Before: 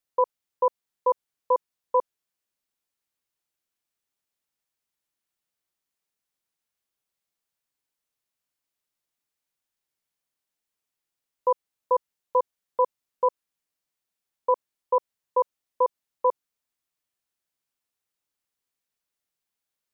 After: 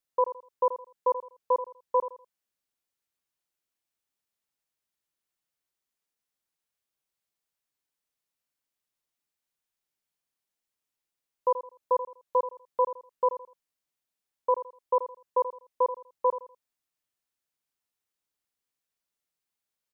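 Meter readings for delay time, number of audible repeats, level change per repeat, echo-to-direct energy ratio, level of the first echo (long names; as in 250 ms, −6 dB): 82 ms, 3, −11.0 dB, −11.5 dB, −12.0 dB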